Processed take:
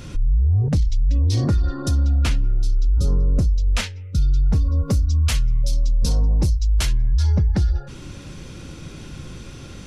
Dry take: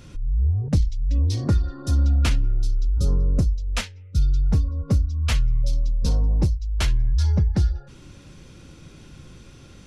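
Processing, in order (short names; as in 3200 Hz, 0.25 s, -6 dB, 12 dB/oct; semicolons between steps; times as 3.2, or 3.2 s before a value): 4.64–6.93 high shelf 5200 Hz +11 dB; limiter -21 dBFS, peak gain reduction 11.5 dB; gain +8.5 dB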